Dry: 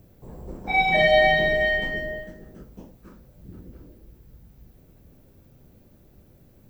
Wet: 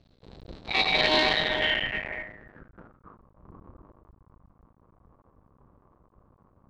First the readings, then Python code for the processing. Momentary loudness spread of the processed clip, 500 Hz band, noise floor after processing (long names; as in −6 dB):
17 LU, −9.5 dB, −64 dBFS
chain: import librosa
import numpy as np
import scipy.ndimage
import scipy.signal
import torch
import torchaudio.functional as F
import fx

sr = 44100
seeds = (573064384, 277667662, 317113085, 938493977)

y = fx.cycle_switch(x, sr, every=2, mode='muted')
y = fx.filter_sweep_lowpass(y, sr, from_hz=4100.0, to_hz=1100.0, start_s=1.33, end_s=3.17, q=6.3)
y = y * 10.0 ** (-5.0 / 20.0)